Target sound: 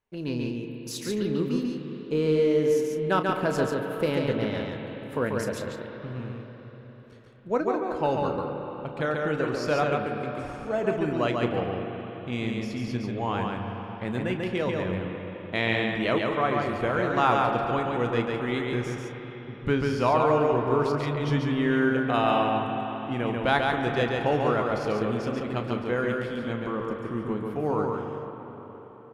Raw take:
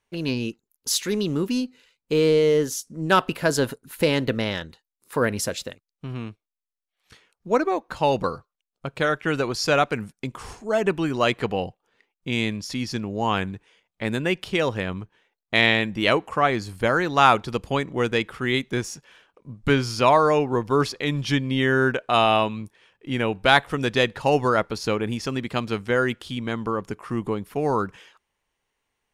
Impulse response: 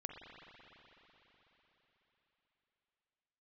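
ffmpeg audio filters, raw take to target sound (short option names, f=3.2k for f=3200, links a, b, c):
-filter_complex "[0:a]highshelf=f=2.2k:g=-10,asplit=2[a][b];[b]adelay=33,volume=-11.5dB[c];[a][c]amix=inputs=2:normalize=0,asplit=2[d][e];[1:a]atrim=start_sample=2205,adelay=140[f];[e][f]afir=irnorm=-1:irlink=0,volume=1.5dB[g];[d][g]amix=inputs=2:normalize=0,volume=-5dB"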